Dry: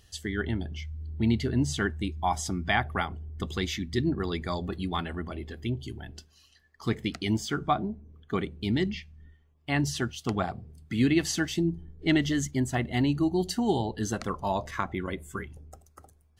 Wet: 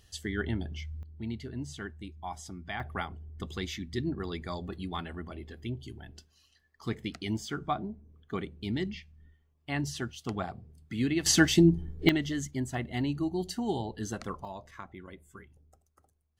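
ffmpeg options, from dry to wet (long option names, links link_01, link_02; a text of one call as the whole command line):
ffmpeg -i in.wav -af "asetnsamples=nb_out_samples=441:pad=0,asendcmd='1.03 volume volume -12dB;2.8 volume volume -5.5dB;11.26 volume volume 6.5dB;12.09 volume volume -5.5dB;14.45 volume volume -14dB',volume=-2dB" out.wav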